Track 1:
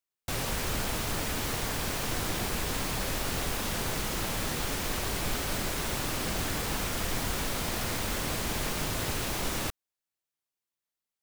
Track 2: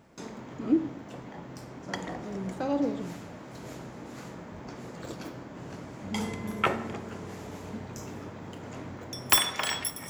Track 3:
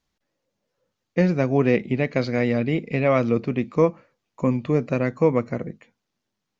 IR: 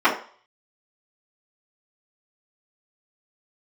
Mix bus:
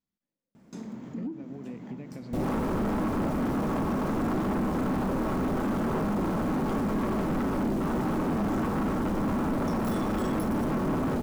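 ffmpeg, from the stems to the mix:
-filter_complex "[0:a]afwtdn=0.0251,adelay=2050,volume=1.33,asplit=2[s0][s1];[s1]volume=0.119[s2];[1:a]highshelf=f=8600:g=6.5,adelay=550,volume=0.501[s3];[2:a]acompressor=threshold=0.0891:ratio=6,volume=0.112[s4];[s3][s4]amix=inputs=2:normalize=0,asoftclip=type=tanh:threshold=0.0596,acompressor=threshold=0.00708:ratio=4,volume=1[s5];[3:a]atrim=start_sample=2205[s6];[s2][s6]afir=irnorm=-1:irlink=0[s7];[s0][s5][s7]amix=inputs=3:normalize=0,equalizer=f=210:t=o:w=1.2:g=14,asoftclip=type=tanh:threshold=0.0631"

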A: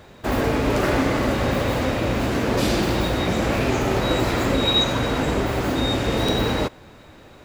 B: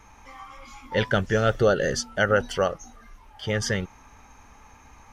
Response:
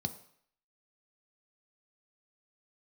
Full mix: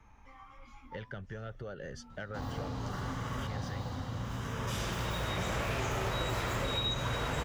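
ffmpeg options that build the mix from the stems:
-filter_complex "[0:a]adelay=2100,volume=0.668,asplit=2[s0][s1];[s1]volume=0.178[s2];[1:a]bass=f=250:g=6,treble=f=4000:g=-9,acompressor=threshold=0.0501:ratio=6,asoftclip=type=tanh:threshold=0.119,volume=0.282,asplit=2[s3][s4];[s4]apad=whole_len=420905[s5];[s0][s5]sidechaincompress=threshold=0.00178:ratio=6:attack=16:release=1220[s6];[2:a]atrim=start_sample=2205[s7];[s2][s7]afir=irnorm=-1:irlink=0[s8];[s6][s3][s8]amix=inputs=3:normalize=0,acrossover=split=110|500[s9][s10][s11];[s9]acompressor=threshold=0.0141:ratio=4[s12];[s10]acompressor=threshold=0.00562:ratio=4[s13];[s11]acompressor=threshold=0.02:ratio=4[s14];[s12][s13][s14]amix=inputs=3:normalize=0"

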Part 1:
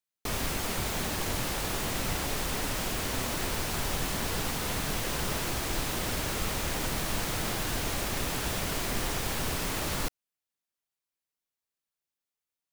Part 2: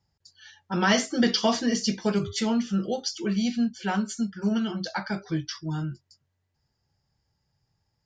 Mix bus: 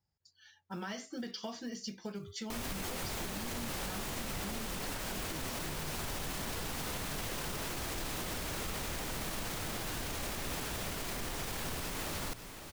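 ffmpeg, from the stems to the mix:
-filter_complex "[0:a]bandreject=f=60:t=h:w=6,bandreject=f=120:t=h:w=6,adelay=2250,volume=1.12,asplit=2[s0][s1];[s1]volume=0.141[s2];[1:a]acompressor=threshold=0.0447:ratio=6,acrusher=bits=7:mode=log:mix=0:aa=0.000001,volume=0.282,asplit=2[s3][s4];[s4]apad=whole_len=660293[s5];[s0][s5]sidechaincompress=threshold=0.00562:ratio=3:attack=46:release=266[s6];[s2]aecho=0:1:548:1[s7];[s6][s3][s7]amix=inputs=3:normalize=0,alimiter=level_in=1.78:limit=0.0631:level=0:latency=1:release=86,volume=0.562"

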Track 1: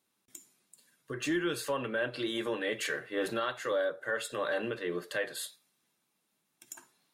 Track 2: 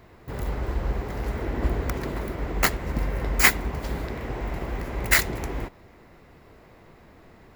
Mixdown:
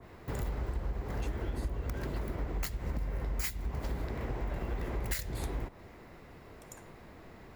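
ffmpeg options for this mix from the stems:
-filter_complex "[0:a]acompressor=threshold=0.0126:ratio=6,volume=0.531,asplit=3[s0][s1][s2];[s0]atrim=end=2.18,asetpts=PTS-STARTPTS,afade=t=out:st=2.176:d=0.004:c=hsin[s3];[s1]atrim=start=2.18:end=4.5,asetpts=PTS-STARTPTS,volume=0[s4];[s2]atrim=start=4.5,asetpts=PTS-STARTPTS,afade=t=in:d=0.004:c=hsin[s5];[s3][s4][s5]concat=n=3:v=0:a=1[s6];[1:a]acrossover=split=140|3000[s7][s8][s9];[s8]acompressor=threshold=0.0178:ratio=6[s10];[s7][s10][s9]amix=inputs=3:normalize=0,adynamicequalizer=threshold=0.00316:dfrequency=1900:dqfactor=0.7:tfrequency=1900:tqfactor=0.7:attack=5:release=100:ratio=0.375:range=2.5:mode=cutabove:tftype=highshelf,volume=0.944[s11];[s6][s11]amix=inputs=2:normalize=0,acompressor=threshold=0.0282:ratio=6"

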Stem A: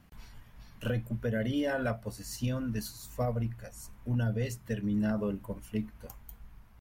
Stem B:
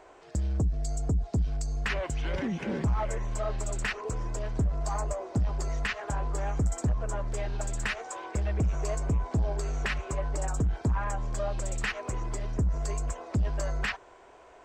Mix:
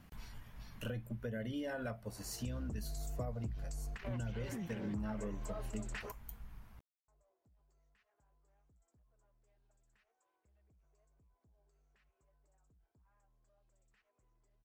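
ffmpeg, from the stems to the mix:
-filter_complex "[0:a]volume=1.06,asplit=2[s0][s1];[1:a]alimiter=level_in=1.12:limit=0.0631:level=0:latency=1:release=36,volume=0.891,adelay=2100,volume=0.75,asplit=3[s2][s3][s4];[s2]atrim=end=6.12,asetpts=PTS-STARTPTS,afade=t=out:st=6.116:d=0.004:c=hsin[s5];[s3]atrim=start=6.12:end=7.08,asetpts=PTS-STARTPTS,volume=0[s6];[s4]atrim=start=7.08,asetpts=PTS-STARTPTS,afade=t=in:d=0.004:c=hsin[s7];[s5][s6][s7]concat=n=3:v=0:a=1[s8];[s1]apad=whole_len=738259[s9];[s8][s9]sidechaingate=range=0.01:threshold=0.00398:ratio=16:detection=peak[s10];[s0][s10]amix=inputs=2:normalize=0,acompressor=threshold=0.00708:ratio=2.5"

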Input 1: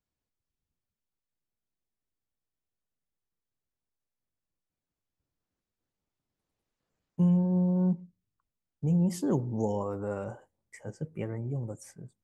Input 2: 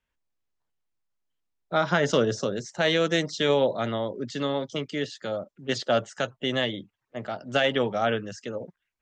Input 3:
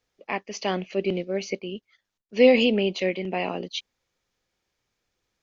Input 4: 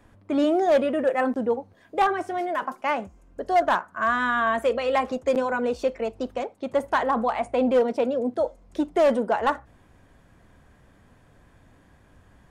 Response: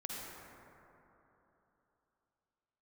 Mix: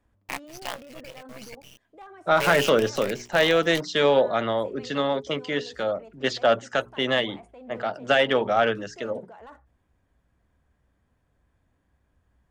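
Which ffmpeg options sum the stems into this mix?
-filter_complex "[1:a]bandreject=f=60:t=h:w=6,bandreject=f=120:t=h:w=6,bandreject=f=180:t=h:w=6,bandreject=f=240:t=h:w=6,bandreject=f=300:t=h:w=6,bandreject=f=360:t=h:w=6,bandreject=f=420:t=h:w=6,asplit=2[s0][s1];[s1]highpass=f=720:p=1,volume=2.82,asoftclip=type=tanh:threshold=0.335[s2];[s0][s2]amix=inputs=2:normalize=0,lowpass=f=2100:p=1,volume=0.501,adelay=550,volume=1.41[s3];[2:a]highpass=f=690:w=0.5412,highpass=f=690:w=1.3066,aeval=exprs='val(0)*sin(2*PI*66*n/s)':c=same,acrusher=bits=5:dc=4:mix=0:aa=0.000001,volume=0.891[s4];[3:a]alimiter=limit=0.0668:level=0:latency=1:release=18,equalizer=f=60:t=o:w=0.77:g=9,volume=0.158[s5];[s3][s4][s5]amix=inputs=3:normalize=0"

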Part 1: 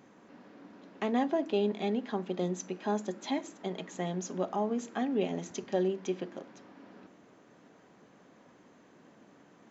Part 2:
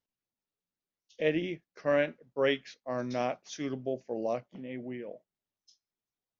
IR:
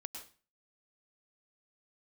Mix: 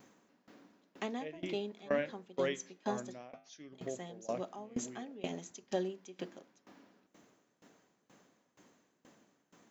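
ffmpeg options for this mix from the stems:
-filter_complex "[0:a]aemphasis=mode=production:type=75kf,volume=0.75,asplit=3[s0][s1][s2];[s0]atrim=end=3.18,asetpts=PTS-STARTPTS,afade=t=out:st=3.176:d=0.004:c=hsin[s3];[s1]atrim=start=3.18:end=3.72,asetpts=PTS-STARTPTS,volume=0[s4];[s2]atrim=start=3.72,asetpts=PTS-STARTPTS,afade=t=in:d=0.004:c=hsin[s5];[s3][s4][s5]concat=n=3:v=0:a=1[s6];[1:a]flanger=delay=9.5:depth=7:regen=-89:speed=0.58:shape=sinusoidal,volume=1.12,asplit=2[s7][s8];[s8]apad=whole_len=428117[s9];[s6][s9]sidechaincompress=threshold=0.0141:ratio=3:attack=34:release=139[s10];[s10][s7]amix=inputs=2:normalize=0,aeval=exprs='val(0)*pow(10,-21*if(lt(mod(2.1*n/s,1),2*abs(2.1)/1000),1-mod(2.1*n/s,1)/(2*abs(2.1)/1000),(mod(2.1*n/s,1)-2*abs(2.1)/1000)/(1-2*abs(2.1)/1000))/20)':c=same"

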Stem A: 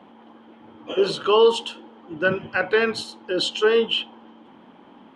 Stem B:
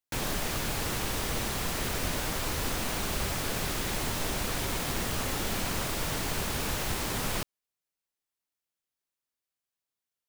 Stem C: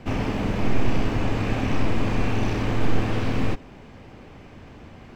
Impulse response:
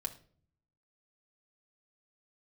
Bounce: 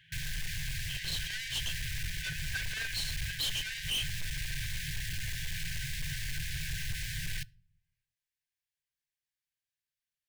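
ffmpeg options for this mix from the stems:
-filter_complex "[0:a]volume=1.12[s0];[1:a]highshelf=f=4700:g=-8,volume=1,asplit=2[s1][s2];[s2]volume=0.188[s3];[2:a]highpass=1200,adelay=1150,volume=0.299,asplit=2[s4][s5];[s5]volume=0.562[s6];[3:a]atrim=start_sample=2205[s7];[s3][s7]afir=irnorm=-1:irlink=0[s8];[s6]aecho=0:1:583|1166|1749|2332:1|0.26|0.0676|0.0176[s9];[s0][s1][s4][s8][s9]amix=inputs=5:normalize=0,asoftclip=type=tanh:threshold=0.0422,afftfilt=real='re*(1-between(b*sr/4096,170,1500))':imag='im*(1-between(b*sr/4096,170,1500))':win_size=4096:overlap=0.75,asoftclip=type=hard:threshold=0.0316"

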